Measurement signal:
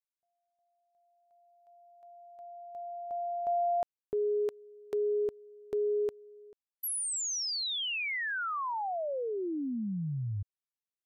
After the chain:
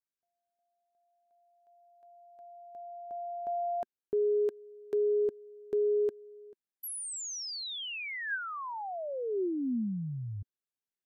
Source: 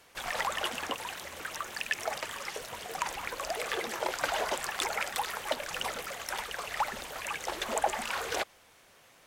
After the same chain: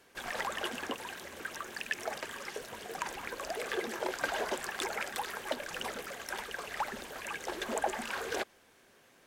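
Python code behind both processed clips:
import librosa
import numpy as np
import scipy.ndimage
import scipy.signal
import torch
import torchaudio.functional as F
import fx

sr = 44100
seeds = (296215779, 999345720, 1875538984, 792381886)

y = fx.small_body(x, sr, hz=(240.0, 370.0, 1600.0), ring_ms=25, db=8)
y = y * librosa.db_to_amplitude(-5.0)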